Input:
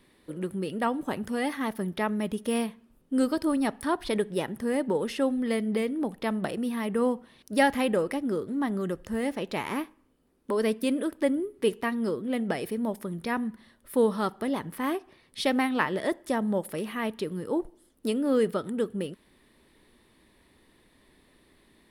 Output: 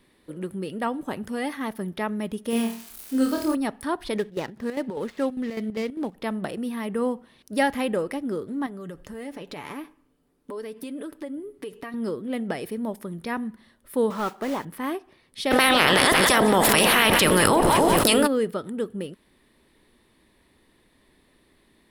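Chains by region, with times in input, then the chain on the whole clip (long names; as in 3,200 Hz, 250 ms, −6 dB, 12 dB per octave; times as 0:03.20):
0:02.50–0:03.55: spike at every zero crossing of −29.5 dBFS + high-shelf EQ 9,500 Hz −4 dB + flutter between parallel walls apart 4.5 metres, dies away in 0.42 s
0:04.17–0:06.15: running median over 15 samples + parametric band 3,300 Hz +6 dB 2.2 octaves + square-wave tremolo 5 Hz, depth 65%, duty 65%
0:08.66–0:11.94: downward compressor 10 to 1, threshold −32 dBFS + comb filter 6.9 ms, depth 37%
0:14.10–0:14.65: noise that follows the level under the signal 11 dB + mid-hump overdrive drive 14 dB, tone 1,300 Hz, clips at −14.5 dBFS
0:15.50–0:18.26: ceiling on every frequency bin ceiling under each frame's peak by 24 dB + echo with a time of its own for lows and highs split 910 Hz, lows 277 ms, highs 177 ms, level −14.5 dB + envelope flattener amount 100%
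whole clip: no processing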